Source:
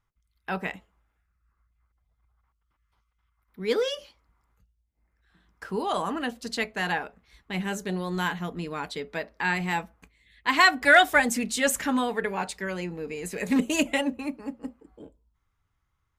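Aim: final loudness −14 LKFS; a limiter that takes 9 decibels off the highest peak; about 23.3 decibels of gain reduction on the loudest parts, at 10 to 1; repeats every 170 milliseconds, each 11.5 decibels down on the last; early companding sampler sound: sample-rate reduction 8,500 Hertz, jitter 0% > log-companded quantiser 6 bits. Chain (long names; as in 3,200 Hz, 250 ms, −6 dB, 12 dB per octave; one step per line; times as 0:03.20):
downward compressor 10 to 1, threshold −37 dBFS
brickwall limiter −31 dBFS
repeating echo 170 ms, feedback 27%, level −11.5 dB
sample-rate reduction 8,500 Hz, jitter 0%
log-companded quantiser 6 bits
level +28 dB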